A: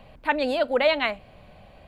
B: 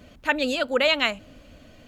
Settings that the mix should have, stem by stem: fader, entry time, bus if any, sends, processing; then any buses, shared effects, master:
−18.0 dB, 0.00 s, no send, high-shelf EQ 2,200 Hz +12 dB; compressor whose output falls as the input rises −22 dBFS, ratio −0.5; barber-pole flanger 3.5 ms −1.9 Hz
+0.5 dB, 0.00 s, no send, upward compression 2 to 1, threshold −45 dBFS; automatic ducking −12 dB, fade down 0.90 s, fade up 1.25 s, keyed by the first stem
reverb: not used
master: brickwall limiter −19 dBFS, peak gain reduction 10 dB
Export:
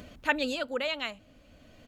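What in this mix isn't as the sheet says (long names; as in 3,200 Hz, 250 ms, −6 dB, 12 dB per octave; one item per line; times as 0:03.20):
stem A −18.0 dB → −24.0 dB
master: missing brickwall limiter −19 dBFS, peak gain reduction 10 dB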